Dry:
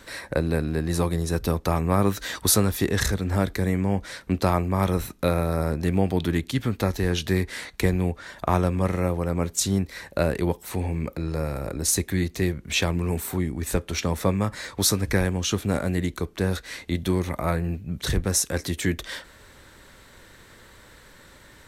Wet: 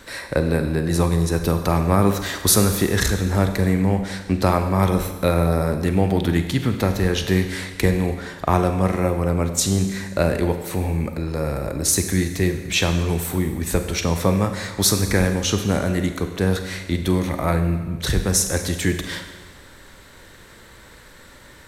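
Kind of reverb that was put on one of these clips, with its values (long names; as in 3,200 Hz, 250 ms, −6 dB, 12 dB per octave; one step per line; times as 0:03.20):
four-comb reverb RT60 1.3 s, combs from 32 ms, DRR 7 dB
level +3.5 dB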